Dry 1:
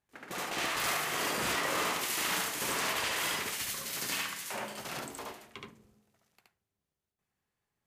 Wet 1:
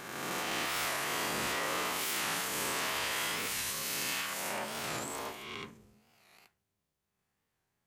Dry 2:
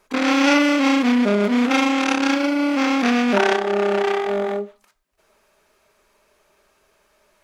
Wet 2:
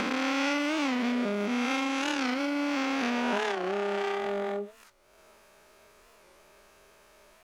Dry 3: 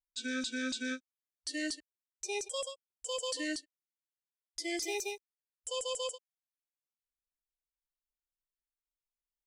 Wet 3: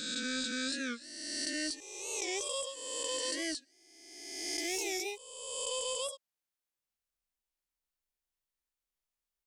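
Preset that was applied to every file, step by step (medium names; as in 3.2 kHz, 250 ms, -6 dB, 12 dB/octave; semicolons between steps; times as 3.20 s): reverse spectral sustain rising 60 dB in 1.46 s; compression 2.5:1, threshold -33 dBFS; warped record 45 rpm, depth 160 cents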